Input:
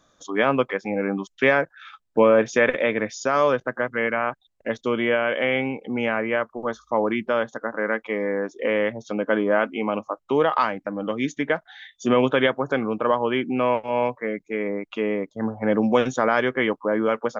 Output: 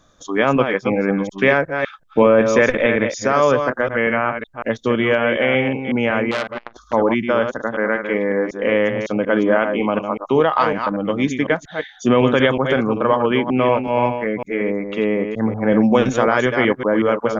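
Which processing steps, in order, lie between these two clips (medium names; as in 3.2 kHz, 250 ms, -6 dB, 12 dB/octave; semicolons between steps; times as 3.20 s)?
chunks repeated in reverse 185 ms, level -7 dB; bass shelf 110 Hz +10.5 dB; in parallel at -1.5 dB: peak limiter -10 dBFS, peak gain reduction 7 dB; 6.31–6.93 s: on the sum: transformer saturation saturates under 2.6 kHz; trim -1 dB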